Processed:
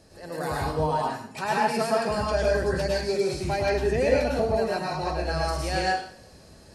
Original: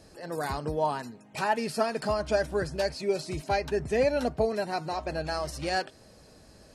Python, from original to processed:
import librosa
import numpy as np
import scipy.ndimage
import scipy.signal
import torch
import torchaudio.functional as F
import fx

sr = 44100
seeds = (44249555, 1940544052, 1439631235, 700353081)

y = fx.rev_plate(x, sr, seeds[0], rt60_s=0.57, hf_ratio=0.95, predelay_ms=90, drr_db=-4.0)
y = y * 10.0 ** (-1.5 / 20.0)